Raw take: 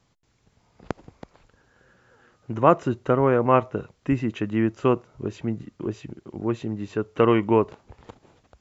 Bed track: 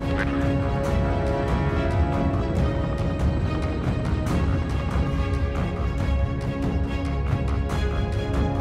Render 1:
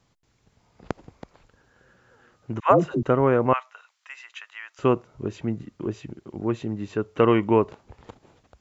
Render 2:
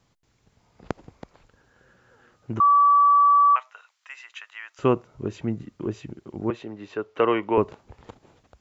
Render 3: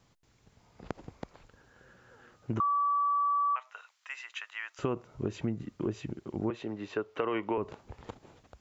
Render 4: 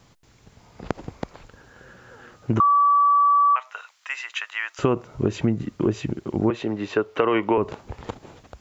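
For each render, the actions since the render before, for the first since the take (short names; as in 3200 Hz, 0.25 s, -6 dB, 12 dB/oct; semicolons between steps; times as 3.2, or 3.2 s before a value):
2.6–3.03 dispersion lows, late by 0.113 s, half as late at 540 Hz; 3.53–4.79 Bessel high-pass 1500 Hz, order 6
2.6–3.56 bleep 1150 Hz -13 dBFS; 6.5–7.58 three-band isolator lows -14 dB, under 340 Hz, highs -15 dB, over 5700 Hz
limiter -15 dBFS, peak gain reduction 7.5 dB; compressor 5:1, threshold -28 dBFS, peak gain reduction 10 dB
gain +11 dB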